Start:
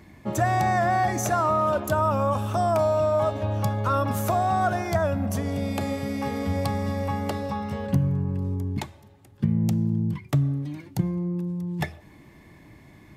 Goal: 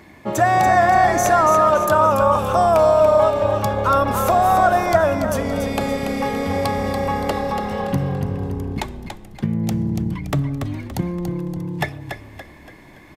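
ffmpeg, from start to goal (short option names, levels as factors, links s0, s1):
-filter_complex "[0:a]bass=f=250:g=-9,treble=f=4000:g=-3,asplit=2[s0][s1];[s1]asplit=5[s2][s3][s4][s5][s6];[s2]adelay=285,afreqshift=-35,volume=0.447[s7];[s3]adelay=570,afreqshift=-70,volume=0.193[s8];[s4]adelay=855,afreqshift=-105,volume=0.0822[s9];[s5]adelay=1140,afreqshift=-140,volume=0.0355[s10];[s6]adelay=1425,afreqshift=-175,volume=0.0153[s11];[s7][s8][s9][s10][s11]amix=inputs=5:normalize=0[s12];[s0][s12]amix=inputs=2:normalize=0,volume=2.51"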